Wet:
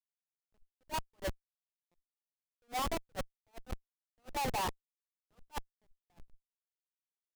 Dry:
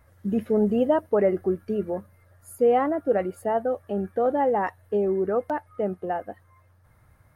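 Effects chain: ladder band-pass 1300 Hz, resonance 45%; Schmitt trigger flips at -41 dBFS; attack slew limiter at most 500 dB/s; gain +11.5 dB

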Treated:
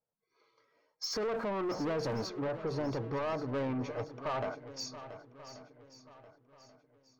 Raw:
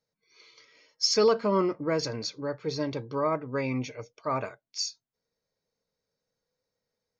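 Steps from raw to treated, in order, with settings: 1.13–2.29 zero-crossing step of -40.5 dBFS; LPF 3900 Hz 6 dB/oct; resonant high shelf 1800 Hz -9 dB, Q 1.5; gate -58 dBFS, range -13 dB; in parallel at -2 dB: compressor, threshold -35 dBFS, peak gain reduction 16.5 dB; on the sum: bell 740 Hz +7 dB 0.55 oct; limiter -21.5 dBFS, peak gain reduction 12 dB; soft clip -30.5 dBFS, distortion -11 dB; swung echo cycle 1.134 s, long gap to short 1.5:1, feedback 33%, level -13 dB

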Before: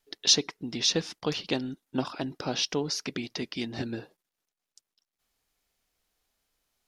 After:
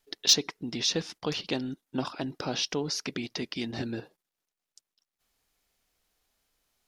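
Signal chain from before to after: in parallel at +1 dB: level quantiser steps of 20 dB; on the sum: soft clip -6 dBFS, distortion -20 dB; gain -3.5 dB

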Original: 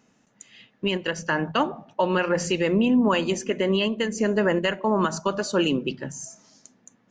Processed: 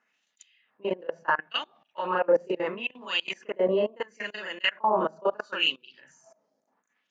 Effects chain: reverse echo 38 ms -4 dB; level quantiser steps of 23 dB; LFO band-pass sine 0.73 Hz 530–3700 Hz; gain +7 dB

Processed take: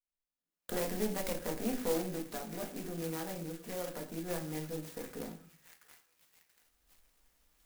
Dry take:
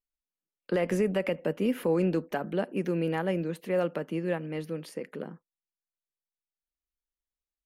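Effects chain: recorder AGC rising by 17 dB/s; bell 3300 Hz +5.5 dB 2.7 oct; 2–4.24 compressor 2:1, threshold -30 dBFS, peak gain reduction 5 dB; tube stage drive 20 dB, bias 0.75; delay with a stepping band-pass 0.681 s, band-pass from 1700 Hz, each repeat 0.7 oct, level -7.5 dB; reverb RT60 0.45 s, pre-delay 4 ms, DRR 0.5 dB; clock jitter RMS 0.097 ms; gain -7.5 dB

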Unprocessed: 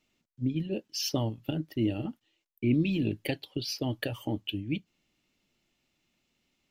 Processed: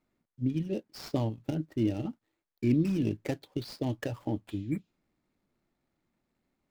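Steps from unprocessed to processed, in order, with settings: median filter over 15 samples; spectral repair 4.52–4.97, 2400–7300 Hz both

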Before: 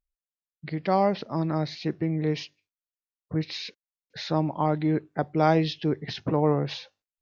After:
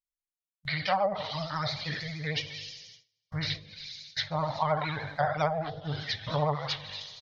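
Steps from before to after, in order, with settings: spectral trails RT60 1.65 s; gate with hold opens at -33 dBFS; bell 730 Hz -6.5 dB 2.6 oct; notch 2600 Hz, Q 5.9; comb 6.5 ms, depth 33%; early reflections 20 ms -6 dB, 54 ms -10 dB; reverb removal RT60 1.4 s; EQ curve 100 Hz 0 dB, 350 Hz -23 dB, 590 Hz +1 dB, 6900 Hz +13 dB; treble ducked by the level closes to 460 Hz, closed at -18.5 dBFS; vibrato 13 Hz 73 cents

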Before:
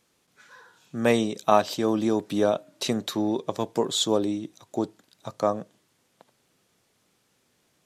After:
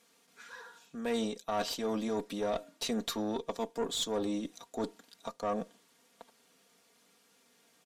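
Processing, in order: HPF 290 Hz 6 dB/oct; comb 4.3 ms, depth 70%; reverse; compressor 4:1, threshold -32 dBFS, peak gain reduction 16.5 dB; reverse; tube stage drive 27 dB, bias 0.45; gain +2.5 dB

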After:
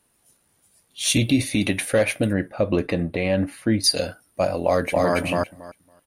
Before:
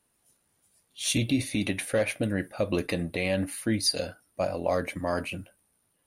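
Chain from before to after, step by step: 2.33–3.84 LPF 1700 Hz 6 dB/oct; 4.64–5.15 echo throw 0.28 s, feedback 15%, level -1 dB; gain +6.5 dB

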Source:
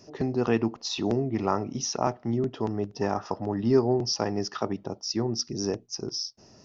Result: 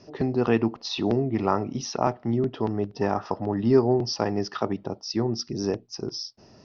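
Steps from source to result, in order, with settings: LPF 4900 Hz 24 dB/oct; gain +2.5 dB

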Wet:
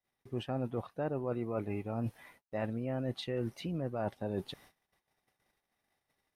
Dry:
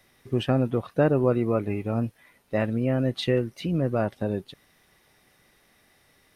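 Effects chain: gate -58 dBFS, range -33 dB; bell 820 Hz +6.5 dB 0.75 oct; reverse; compressor 6:1, threshold -33 dBFS, peak gain reduction 17.5 dB; reverse

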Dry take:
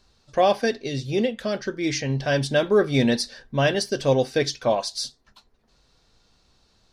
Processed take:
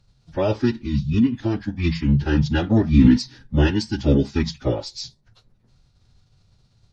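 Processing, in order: resonant low shelf 350 Hz +9.5 dB, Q 1.5; formant-preserving pitch shift -11 st; gain -2 dB

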